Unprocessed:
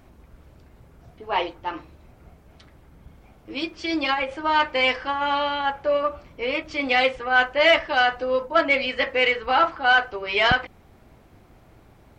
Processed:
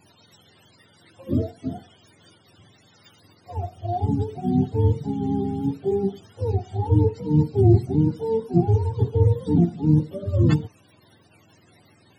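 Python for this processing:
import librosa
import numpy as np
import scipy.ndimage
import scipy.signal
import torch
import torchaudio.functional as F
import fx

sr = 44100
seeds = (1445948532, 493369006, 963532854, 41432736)

y = fx.octave_mirror(x, sr, pivot_hz=480.0)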